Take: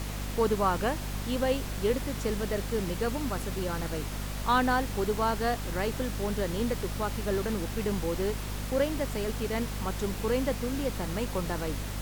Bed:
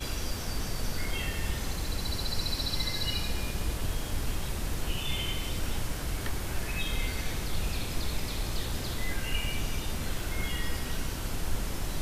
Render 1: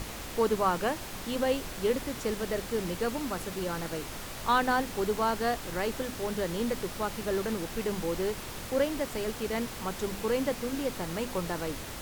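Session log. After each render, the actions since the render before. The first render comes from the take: notches 50/100/150/200/250 Hz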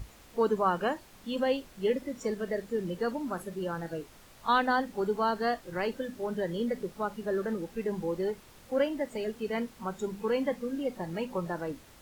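noise print and reduce 15 dB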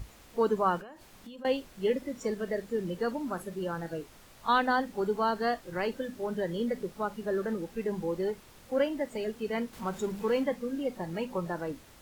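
0.79–1.45 compressor 16:1, threshold -42 dBFS; 9.73–10.44 G.711 law mismatch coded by mu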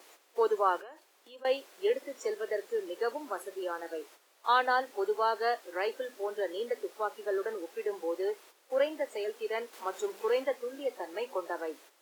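gate -51 dBFS, range -9 dB; steep high-pass 350 Hz 36 dB/oct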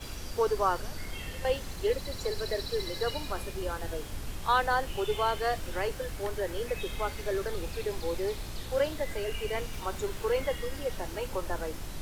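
add bed -6.5 dB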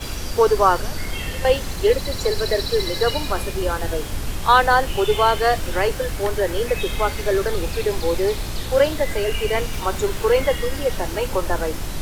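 gain +11.5 dB

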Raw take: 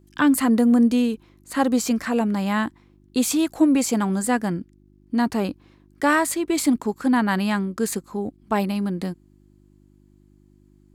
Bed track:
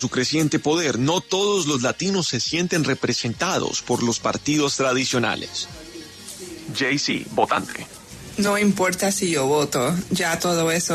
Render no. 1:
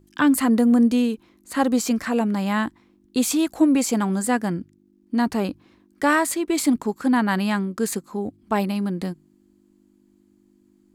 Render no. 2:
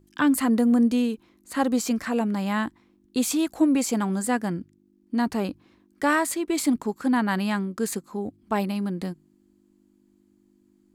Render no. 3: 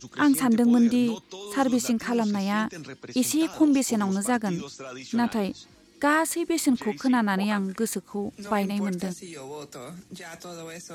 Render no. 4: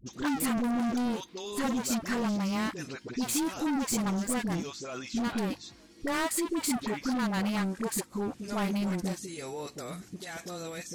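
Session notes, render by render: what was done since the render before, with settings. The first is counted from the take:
de-hum 50 Hz, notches 3
gain -3 dB
add bed track -19 dB
overloaded stage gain 27.5 dB; dispersion highs, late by 60 ms, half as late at 500 Hz

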